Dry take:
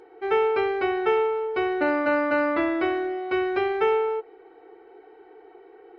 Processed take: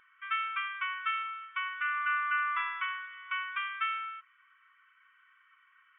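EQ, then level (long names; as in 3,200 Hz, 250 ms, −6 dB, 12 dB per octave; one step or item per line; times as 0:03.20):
linear-phase brick-wall high-pass 980 Hz
linear-phase brick-wall low-pass 3,600 Hz
dynamic equaliser 1,800 Hz, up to −4 dB, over −46 dBFS, Q 2.7
0.0 dB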